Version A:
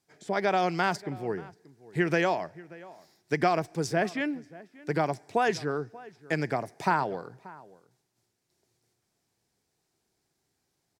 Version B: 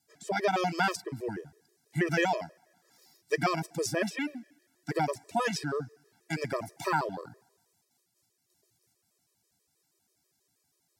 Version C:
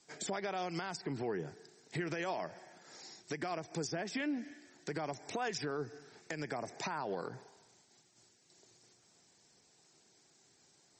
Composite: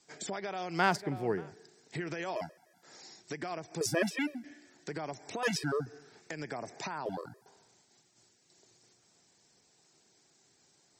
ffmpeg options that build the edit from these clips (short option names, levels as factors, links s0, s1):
-filter_complex "[1:a]asplit=4[s0][s1][s2][s3];[2:a]asplit=6[s4][s5][s6][s7][s8][s9];[s4]atrim=end=0.84[s10];[0:a]atrim=start=0.68:end=1.53[s11];[s5]atrim=start=1.37:end=2.362[s12];[s0]atrim=start=2.358:end=2.832[s13];[s6]atrim=start=2.828:end=3.812[s14];[s1]atrim=start=3.808:end=4.442[s15];[s7]atrim=start=4.438:end=5.432[s16];[s2]atrim=start=5.428:end=5.862[s17];[s8]atrim=start=5.858:end=7.062[s18];[s3]atrim=start=7.058:end=7.462[s19];[s9]atrim=start=7.458[s20];[s10][s11]acrossfade=d=0.16:c1=tri:c2=tri[s21];[s21][s12]acrossfade=d=0.16:c1=tri:c2=tri[s22];[s22][s13]acrossfade=d=0.004:c1=hsin:c2=hsin[s23];[s23][s14]acrossfade=d=0.004:c1=hsin:c2=hsin[s24];[s24][s15]acrossfade=d=0.004:c1=hsin:c2=hsin[s25];[s25][s16]acrossfade=d=0.004:c1=hsin:c2=hsin[s26];[s26][s17]acrossfade=d=0.004:c1=hsin:c2=hsin[s27];[s27][s18]acrossfade=d=0.004:c1=hsin:c2=hsin[s28];[s28][s19]acrossfade=d=0.004:c1=hsin:c2=hsin[s29];[s29][s20]acrossfade=d=0.004:c1=hsin:c2=hsin"